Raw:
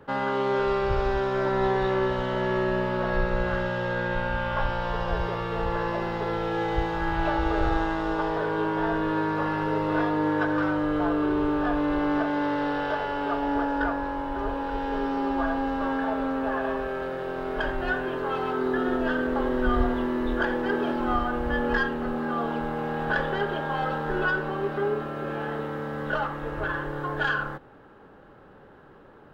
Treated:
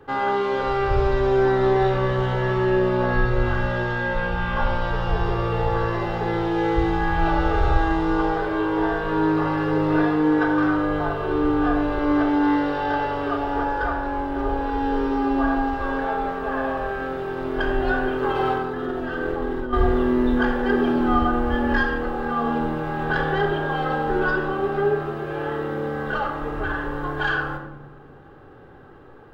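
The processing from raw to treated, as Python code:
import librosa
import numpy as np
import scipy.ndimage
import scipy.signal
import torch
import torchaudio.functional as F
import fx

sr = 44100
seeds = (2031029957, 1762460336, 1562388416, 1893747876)

y = fx.over_compress(x, sr, threshold_db=-28.0, ratio=-0.5, at=(18.22, 19.73))
y = fx.room_shoebox(y, sr, seeds[0], volume_m3=3800.0, walls='furnished', distance_m=3.7)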